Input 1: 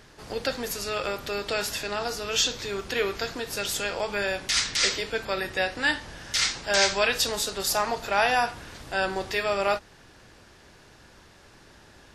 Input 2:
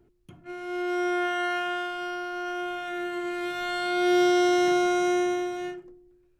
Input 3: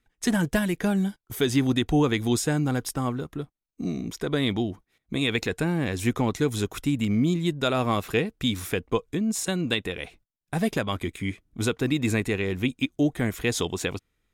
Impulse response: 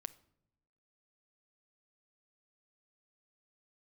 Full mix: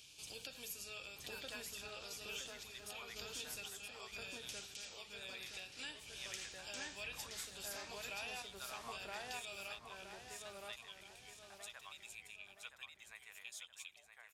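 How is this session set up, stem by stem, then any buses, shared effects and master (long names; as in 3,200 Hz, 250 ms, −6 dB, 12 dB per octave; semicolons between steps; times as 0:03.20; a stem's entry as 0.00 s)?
+3.0 dB, 0.00 s, bus A, send −20.5 dB, echo send −21.5 dB, downward compressor 2 to 1, threshold −33 dBFS, peak gain reduction 9 dB; sample-and-hold tremolo 1.9 Hz, depth 70%
muted
−16.0 dB, 0.00 s, bus A, send −22 dB, echo send −8.5 dB, inverse Chebyshev high-pass filter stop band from 310 Hz, stop band 50 dB; multiband upward and downward expander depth 40%
bus A: 0.0 dB, Chebyshev high-pass with heavy ripple 2,300 Hz, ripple 3 dB; downward compressor 4 to 1, threshold −48 dBFS, peak gain reduction 18 dB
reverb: on, pre-delay 6 ms
echo: repeating echo 970 ms, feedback 38%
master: high-pass filter 60 Hz; low-shelf EQ 120 Hz +10 dB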